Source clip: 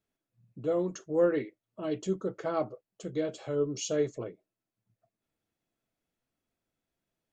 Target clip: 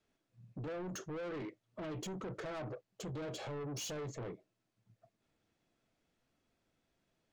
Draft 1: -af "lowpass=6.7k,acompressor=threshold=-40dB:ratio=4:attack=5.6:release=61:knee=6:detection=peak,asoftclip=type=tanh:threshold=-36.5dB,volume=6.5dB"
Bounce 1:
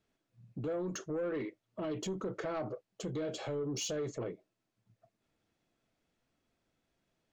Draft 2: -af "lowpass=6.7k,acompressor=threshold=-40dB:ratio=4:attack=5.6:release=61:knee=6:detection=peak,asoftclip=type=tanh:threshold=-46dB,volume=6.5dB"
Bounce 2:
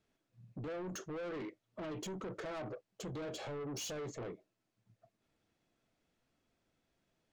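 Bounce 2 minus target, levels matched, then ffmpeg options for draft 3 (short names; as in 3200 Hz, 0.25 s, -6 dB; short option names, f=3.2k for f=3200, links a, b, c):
125 Hz band -2.5 dB
-af "lowpass=6.7k,adynamicequalizer=threshold=0.00282:dfrequency=130:dqfactor=1.9:tfrequency=130:tqfactor=1.9:attack=5:release=100:ratio=0.417:range=3:mode=boostabove:tftype=bell,acompressor=threshold=-40dB:ratio=4:attack=5.6:release=61:knee=6:detection=peak,asoftclip=type=tanh:threshold=-46dB,volume=6.5dB"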